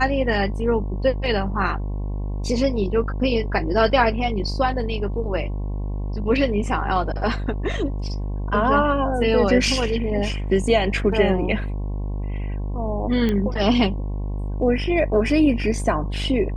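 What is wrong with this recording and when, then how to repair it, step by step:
buzz 50 Hz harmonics 22 -26 dBFS
13.29 s: pop -12 dBFS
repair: de-click; de-hum 50 Hz, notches 22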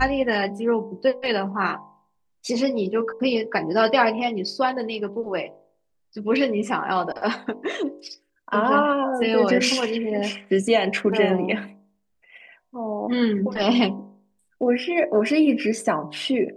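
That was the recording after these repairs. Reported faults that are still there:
nothing left

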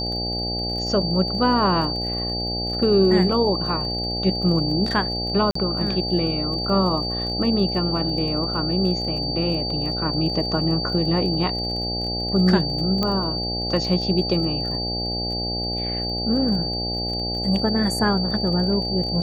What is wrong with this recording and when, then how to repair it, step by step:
buzz 60 Hz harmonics 14 -29 dBFS
crackle 28 per s -31 dBFS
whine 4.6 kHz -26 dBFS
5.51–5.55 s: dropout 44 ms
13.03 s: pop -10 dBFS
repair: de-click; de-hum 60 Hz, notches 14; band-stop 4.6 kHz, Q 30; interpolate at 5.51 s, 44 ms

